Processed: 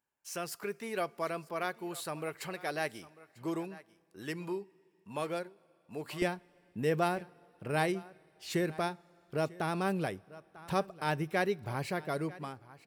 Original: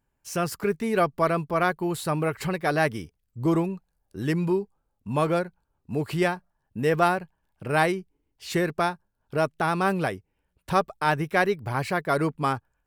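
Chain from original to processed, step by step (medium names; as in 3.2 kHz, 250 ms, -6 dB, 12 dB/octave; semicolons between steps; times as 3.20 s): fade out at the end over 0.98 s; high-pass 660 Hz 6 dB/octave, from 6.22 s 89 Hz; delay 945 ms -21 dB; dynamic bell 1.2 kHz, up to -6 dB, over -38 dBFS, Q 1; two-slope reverb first 0.25 s, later 3.4 s, from -18 dB, DRR 19.5 dB; trim -6 dB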